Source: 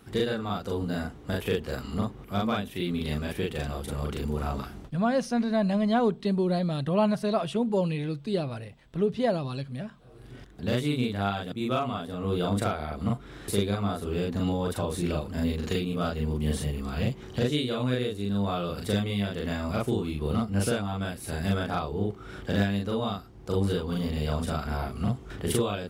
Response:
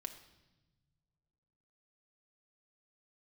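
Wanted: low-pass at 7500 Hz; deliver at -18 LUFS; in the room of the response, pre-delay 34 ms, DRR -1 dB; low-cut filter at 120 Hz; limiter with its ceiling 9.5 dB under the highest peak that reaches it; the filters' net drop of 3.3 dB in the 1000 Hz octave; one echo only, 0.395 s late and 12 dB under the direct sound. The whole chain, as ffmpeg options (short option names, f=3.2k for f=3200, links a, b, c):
-filter_complex "[0:a]highpass=120,lowpass=7.5k,equalizer=f=1k:t=o:g=-5,alimiter=limit=-21.5dB:level=0:latency=1,aecho=1:1:395:0.251,asplit=2[a][b];[1:a]atrim=start_sample=2205,adelay=34[c];[b][c]afir=irnorm=-1:irlink=0,volume=4dB[d];[a][d]amix=inputs=2:normalize=0,volume=10dB"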